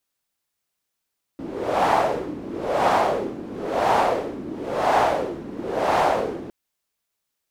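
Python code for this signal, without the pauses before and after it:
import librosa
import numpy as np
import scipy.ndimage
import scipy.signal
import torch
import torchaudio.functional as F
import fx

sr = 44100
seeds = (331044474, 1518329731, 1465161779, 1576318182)

y = fx.wind(sr, seeds[0], length_s=5.11, low_hz=290.0, high_hz=810.0, q=2.8, gusts=5, swing_db=16)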